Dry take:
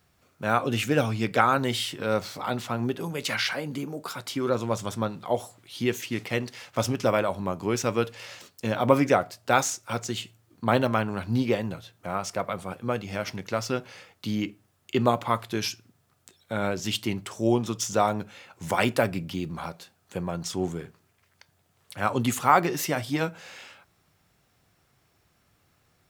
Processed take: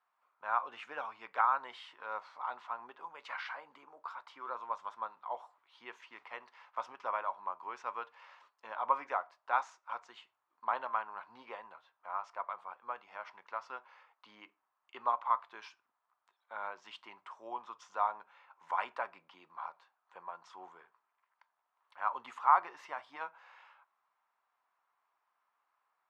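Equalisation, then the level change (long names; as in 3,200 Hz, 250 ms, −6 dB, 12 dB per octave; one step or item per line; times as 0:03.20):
four-pole ladder band-pass 1,100 Hz, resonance 65%
0.0 dB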